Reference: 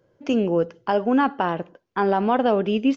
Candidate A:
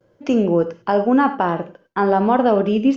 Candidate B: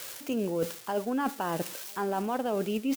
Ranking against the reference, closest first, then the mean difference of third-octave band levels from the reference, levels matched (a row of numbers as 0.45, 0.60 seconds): A, B; 1.5, 10.0 decibels